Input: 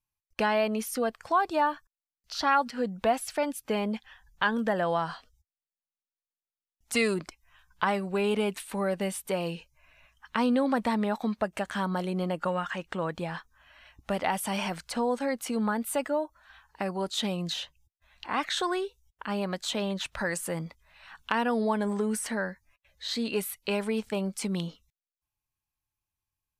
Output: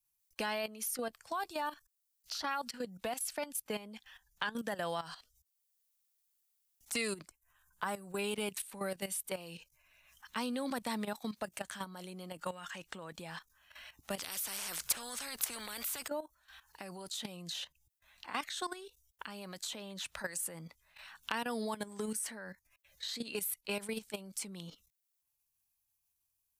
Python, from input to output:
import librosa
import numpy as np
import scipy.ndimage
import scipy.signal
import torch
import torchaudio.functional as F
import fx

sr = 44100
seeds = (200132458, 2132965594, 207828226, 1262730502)

y = fx.band_shelf(x, sr, hz=3400.0, db=-9.5, octaves=1.7, at=(7.28, 8.19))
y = fx.spectral_comp(y, sr, ratio=4.0, at=(14.18, 16.08))
y = fx.level_steps(y, sr, step_db=14)
y = F.preemphasis(torch.from_numpy(y), 0.8).numpy()
y = fx.band_squash(y, sr, depth_pct=40)
y = y * librosa.db_to_amplitude(5.5)